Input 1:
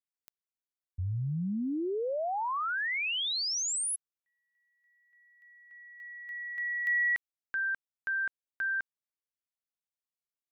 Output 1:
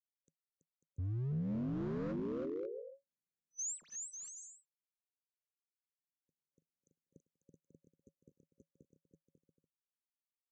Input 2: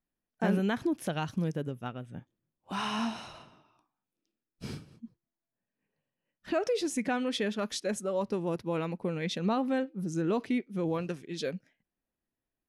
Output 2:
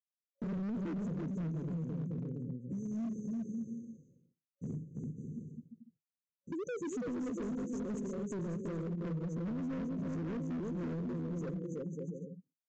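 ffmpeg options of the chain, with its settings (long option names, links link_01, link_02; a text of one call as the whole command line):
ffmpeg -i in.wav -af "equalizer=frequency=2700:width_type=o:width=2.9:gain=-14.5,agate=range=-33dB:threshold=-55dB:ratio=3:release=105:detection=rms,highpass=99,afftfilt=real='re*(1-between(b*sr/4096,550,6000))':imag='im*(1-between(b*sr/4096,550,6000))':win_size=4096:overlap=0.75,aecho=1:1:330|544.5|683.9|774.6|833.5:0.631|0.398|0.251|0.158|0.1,volume=35.5dB,asoftclip=hard,volume=-35.5dB,equalizer=frequency=160:width_type=o:width=0.33:gain=9,equalizer=frequency=250:width_type=o:width=0.33:gain=4,equalizer=frequency=800:width_type=o:width=0.33:gain=-11,acompressor=threshold=-35dB:ratio=6:attack=1.2:release=230:knee=1:detection=peak,aresample=16000,aresample=44100,volume=1dB" out.wav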